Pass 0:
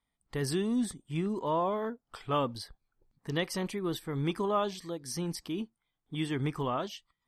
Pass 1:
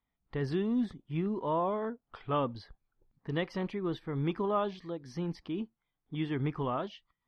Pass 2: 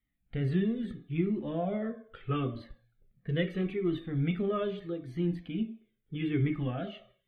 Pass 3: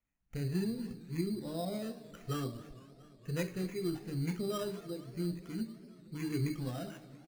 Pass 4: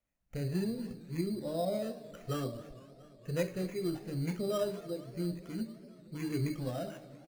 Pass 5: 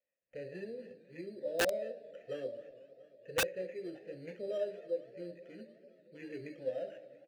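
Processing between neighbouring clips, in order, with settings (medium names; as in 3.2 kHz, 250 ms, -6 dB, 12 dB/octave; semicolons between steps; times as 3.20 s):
distance through air 280 m
static phaser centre 2.3 kHz, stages 4; on a send at -6 dB: reverberation RT60 0.60 s, pre-delay 3 ms; on the sum: Shepard-style flanger falling 0.77 Hz; trim +6.5 dB
sample-and-hold 10×; echo from a far wall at 50 m, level -22 dB; modulated delay 229 ms, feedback 77%, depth 209 cents, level -19.5 dB; trim -5.5 dB
peaking EQ 580 Hz +10.5 dB 0.44 oct
vowel filter e; integer overflow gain 31.5 dB; trim +7 dB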